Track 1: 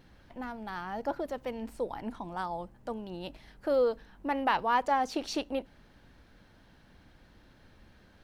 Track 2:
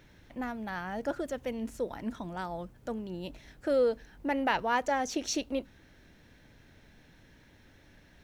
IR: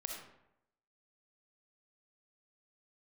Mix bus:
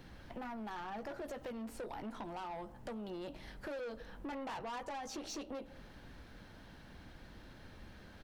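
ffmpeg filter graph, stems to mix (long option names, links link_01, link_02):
-filter_complex "[0:a]acrossover=split=210|1400[link_01][link_02][link_03];[link_01]acompressor=threshold=-50dB:ratio=4[link_04];[link_02]acompressor=threshold=-35dB:ratio=4[link_05];[link_03]acompressor=threshold=-52dB:ratio=4[link_06];[link_04][link_05][link_06]amix=inputs=3:normalize=0,volume=3dB,asplit=3[link_07][link_08][link_09];[link_08]volume=-14dB[link_10];[1:a]adelay=16,volume=-7dB[link_11];[link_09]apad=whole_len=363898[link_12];[link_11][link_12]sidechaingate=range=-33dB:threshold=-45dB:ratio=16:detection=peak[link_13];[2:a]atrim=start_sample=2205[link_14];[link_10][link_14]afir=irnorm=-1:irlink=0[link_15];[link_07][link_13][link_15]amix=inputs=3:normalize=0,asoftclip=type=tanh:threshold=-34dB,acompressor=threshold=-43dB:ratio=3"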